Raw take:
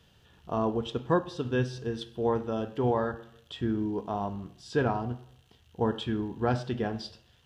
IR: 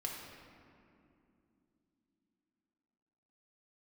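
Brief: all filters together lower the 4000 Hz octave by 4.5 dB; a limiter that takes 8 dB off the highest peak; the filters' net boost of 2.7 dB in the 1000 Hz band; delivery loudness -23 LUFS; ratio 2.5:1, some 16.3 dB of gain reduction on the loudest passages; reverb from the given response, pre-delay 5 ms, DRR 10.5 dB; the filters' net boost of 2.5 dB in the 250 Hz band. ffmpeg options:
-filter_complex "[0:a]equalizer=f=250:t=o:g=3,equalizer=f=1k:t=o:g=3.5,equalizer=f=4k:t=o:g=-6,acompressor=threshold=-45dB:ratio=2.5,alimiter=level_in=10dB:limit=-24dB:level=0:latency=1,volume=-10dB,asplit=2[a][b];[1:a]atrim=start_sample=2205,adelay=5[c];[b][c]afir=irnorm=-1:irlink=0,volume=-11.5dB[d];[a][d]amix=inputs=2:normalize=0,volume=22.5dB"

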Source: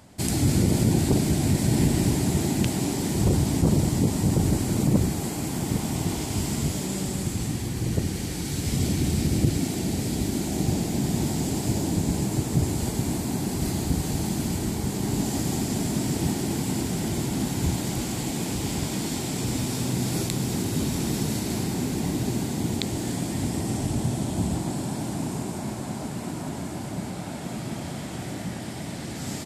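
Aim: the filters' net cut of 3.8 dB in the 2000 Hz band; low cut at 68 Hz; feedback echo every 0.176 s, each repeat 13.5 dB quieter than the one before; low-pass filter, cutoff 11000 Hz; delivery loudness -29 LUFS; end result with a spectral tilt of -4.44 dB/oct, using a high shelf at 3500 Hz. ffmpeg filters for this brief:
-af "highpass=68,lowpass=11k,equalizer=f=2k:t=o:g=-6.5,highshelf=f=3.5k:g=5.5,aecho=1:1:176|352:0.211|0.0444,volume=-3dB"

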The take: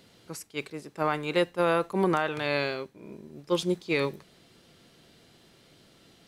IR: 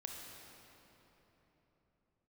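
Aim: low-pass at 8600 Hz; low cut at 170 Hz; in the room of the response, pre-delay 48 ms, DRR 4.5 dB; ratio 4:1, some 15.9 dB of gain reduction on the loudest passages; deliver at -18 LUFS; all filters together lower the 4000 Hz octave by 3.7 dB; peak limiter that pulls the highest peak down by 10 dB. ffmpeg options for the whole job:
-filter_complex "[0:a]highpass=170,lowpass=8.6k,equalizer=f=4k:t=o:g=-4.5,acompressor=threshold=-40dB:ratio=4,alimiter=level_in=11.5dB:limit=-24dB:level=0:latency=1,volume=-11.5dB,asplit=2[a][b];[1:a]atrim=start_sample=2205,adelay=48[c];[b][c]afir=irnorm=-1:irlink=0,volume=-2dB[d];[a][d]amix=inputs=2:normalize=0,volume=28.5dB"

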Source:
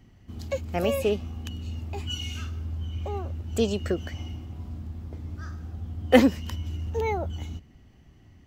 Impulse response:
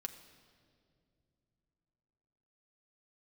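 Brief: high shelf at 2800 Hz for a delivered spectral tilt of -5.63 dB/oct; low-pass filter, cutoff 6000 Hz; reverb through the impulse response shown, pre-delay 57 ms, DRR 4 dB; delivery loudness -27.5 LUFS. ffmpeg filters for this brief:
-filter_complex "[0:a]lowpass=6k,highshelf=f=2.8k:g=-4.5,asplit=2[a][b];[1:a]atrim=start_sample=2205,adelay=57[c];[b][c]afir=irnorm=-1:irlink=0,volume=-1.5dB[d];[a][d]amix=inputs=2:normalize=0,volume=0.5dB"

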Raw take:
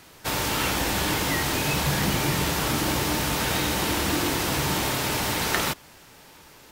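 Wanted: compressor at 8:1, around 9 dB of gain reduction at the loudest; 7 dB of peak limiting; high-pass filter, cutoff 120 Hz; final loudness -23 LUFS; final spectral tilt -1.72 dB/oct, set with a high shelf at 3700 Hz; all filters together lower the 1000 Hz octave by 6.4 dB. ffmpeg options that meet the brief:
-af "highpass=120,equalizer=f=1k:t=o:g=-9,highshelf=f=3.7k:g=8.5,acompressor=threshold=-28dB:ratio=8,volume=7.5dB,alimiter=limit=-15dB:level=0:latency=1"

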